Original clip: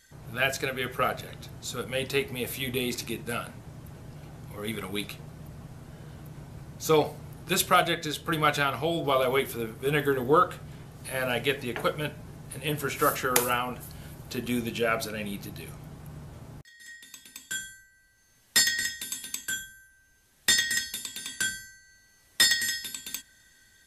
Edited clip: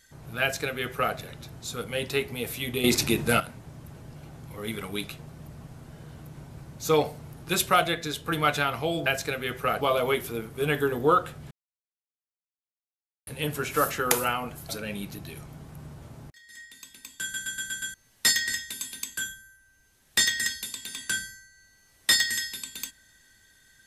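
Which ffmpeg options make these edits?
-filter_complex "[0:a]asplit=14[s0][s1][s2][s3][s4][s5][s6][s7][s8][s9][s10][s11][s12][s13];[s0]atrim=end=2.842[s14];[s1]atrim=start=2.838:end=3.402,asetpts=PTS-STARTPTS,volume=2.99[s15];[s2]atrim=start=3.398:end=9.062[s16];[s3]atrim=start=0.408:end=1.162[s17];[s4]atrim=start=9.058:end=10.76,asetpts=PTS-STARTPTS,afade=t=out:st=1.698:d=0.004:c=hsin[s18];[s5]atrim=start=10.76:end=12.52,asetpts=PTS-STARTPTS,volume=0[s19];[s6]atrim=start=12.52:end=13.942,asetpts=PTS-STARTPTS,afade=t=in:d=0.004:c=hsin[s20];[s7]atrim=start=14.998:end=17.652[s21];[s8]atrim=start=17.528:end=17.652[s22];[s9]atrim=start=17.528:end=17.652[s23];[s10]atrim=start=17.528:end=17.652[s24];[s11]atrim=start=17.528:end=17.652[s25];[s12]atrim=start=17.528:end=17.652[s26];[s13]atrim=start=18.248[s27];[s14][s15]acrossfade=d=0.004:c1=hsin:c2=hsin[s28];[s28][s16]acrossfade=d=0.004:c1=hsin:c2=hsin[s29];[s29][s17]acrossfade=d=0.004:c1=hsin:c2=hsin[s30];[s18][s19][s20]concat=n=3:v=0:a=1[s31];[s30][s31]acrossfade=d=0.004:c1=hsin:c2=hsin[s32];[s32][s21]acrossfade=d=0.004:c1=hsin:c2=hsin[s33];[s33][s22]acrossfade=d=0.004:c1=hsin:c2=hsin[s34];[s34][s23]acrossfade=d=0.004:c1=hsin:c2=hsin[s35];[s35][s24]acrossfade=d=0.004:c1=hsin:c2=hsin[s36];[s36][s25]acrossfade=d=0.004:c1=hsin:c2=hsin[s37];[s37][s26]acrossfade=d=0.004:c1=hsin:c2=hsin[s38];[s38][s27]acrossfade=d=0.004:c1=hsin:c2=hsin"

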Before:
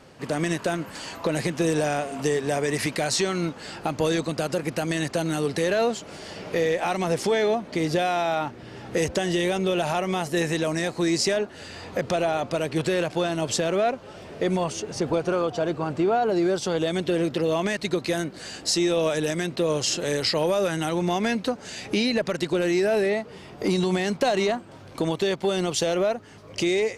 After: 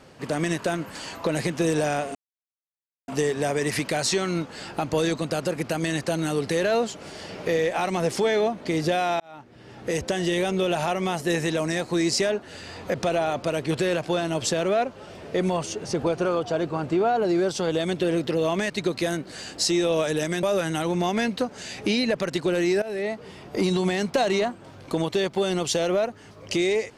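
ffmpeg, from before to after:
-filter_complex "[0:a]asplit=5[s0][s1][s2][s3][s4];[s0]atrim=end=2.15,asetpts=PTS-STARTPTS,afade=t=out:st=2.146:d=0.004:c=hsin,apad=pad_dur=0.93[s5];[s1]atrim=start=2.15:end=8.27,asetpts=PTS-STARTPTS,afade=t=in:d=0.004:c=hsin,afade=t=out:st=6.116:d=0.004:c=hsin[s6];[s2]atrim=start=8.27:end=19.502,asetpts=PTS-STARTPTS,afade=t=in:d=1.35:c=qsin[s7];[s3]atrim=start=20.498:end=22.89,asetpts=PTS-STARTPTS,afade=t=out:st=2.388:d=0.004:c=hsin:silence=0.149624[s8];[s4]atrim=start=22.89,asetpts=PTS-STARTPTS,afade=t=in:d=0.38:silence=0.149624[s9];[s5][s6][s7]concat=n=3:v=0:a=1[s10];[s8][s9]concat=n=2:v=0:a=1[s11];[s10][s11]acrossfade=d=0.004:c1=hsin:c2=hsin"

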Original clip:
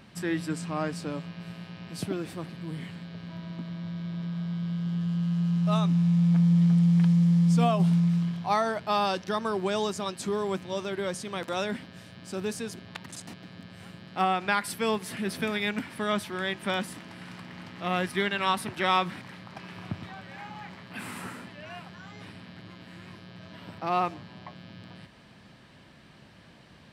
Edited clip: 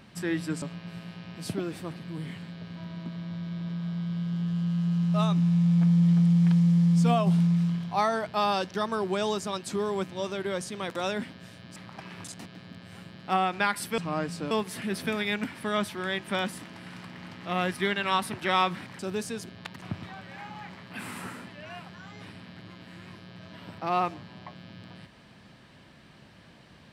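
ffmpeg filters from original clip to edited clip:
-filter_complex "[0:a]asplit=8[s0][s1][s2][s3][s4][s5][s6][s7];[s0]atrim=end=0.622[s8];[s1]atrim=start=1.148:end=12.292[s9];[s2]atrim=start=19.338:end=19.822[s10];[s3]atrim=start=13.118:end=14.862[s11];[s4]atrim=start=0.618:end=1.152[s12];[s5]atrim=start=14.858:end=19.342[s13];[s6]atrim=start=12.288:end=13.122[s14];[s7]atrim=start=19.818[s15];[s8][s9]acrossfade=d=0.004:c1=hsin:c2=hsin[s16];[s16][s10]acrossfade=d=0.004:c1=hsin:c2=hsin[s17];[s17][s11]acrossfade=d=0.004:c1=hsin:c2=hsin[s18];[s18][s12]acrossfade=d=0.004:c1=hsin:c2=hsin[s19];[s19][s13]acrossfade=d=0.004:c1=hsin:c2=hsin[s20];[s20][s14]acrossfade=d=0.004:c1=hsin:c2=hsin[s21];[s21][s15]acrossfade=d=0.004:c1=hsin:c2=hsin"

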